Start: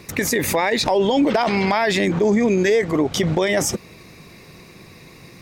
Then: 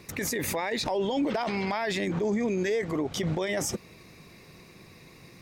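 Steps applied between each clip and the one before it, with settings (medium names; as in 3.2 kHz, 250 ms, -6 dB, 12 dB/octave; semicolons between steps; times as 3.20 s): peak limiter -13 dBFS, peak gain reduction 5 dB; trim -7.5 dB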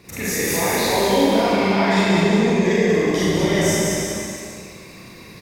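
on a send: bouncing-ball echo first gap 190 ms, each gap 0.9×, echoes 5; on the sum: Schroeder reverb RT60 1.5 s, combs from 32 ms, DRR -8.5 dB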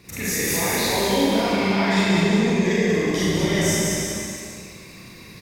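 peaking EQ 630 Hz -5 dB 2.3 oct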